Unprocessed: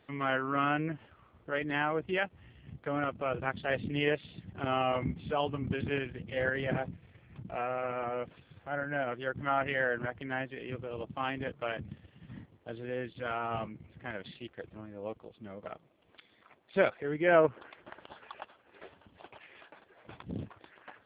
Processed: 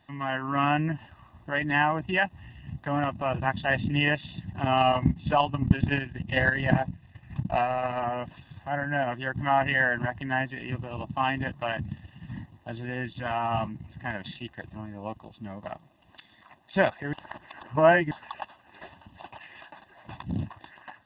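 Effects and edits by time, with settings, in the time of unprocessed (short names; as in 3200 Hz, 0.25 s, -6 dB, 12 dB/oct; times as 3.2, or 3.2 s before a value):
4.77–8 transient shaper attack +8 dB, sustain -6 dB
17.13–18.11 reverse
whole clip: notch 2200 Hz, Q 10; comb 1.1 ms, depth 81%; AGC gain up to 6.5 dB; gain -1 dB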